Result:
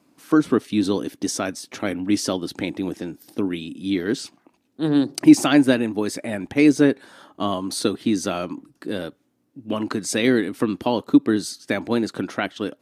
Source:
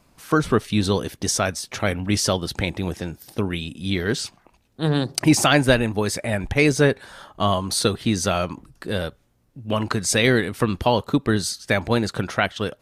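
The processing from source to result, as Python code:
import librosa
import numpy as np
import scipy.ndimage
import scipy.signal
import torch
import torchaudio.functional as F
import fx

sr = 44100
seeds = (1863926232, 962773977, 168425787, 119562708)

y = scipy.signal.sosfilt(scipy.signal.butter(2, 160.0, 'highpass', fs=sr, output='sos'), x)
y = fx.peak_eq(y, sr, hz=290.0, db=13.0, octaves=0.66)
y = F.gain(torch.from_numpy(y), -5.0).numpy()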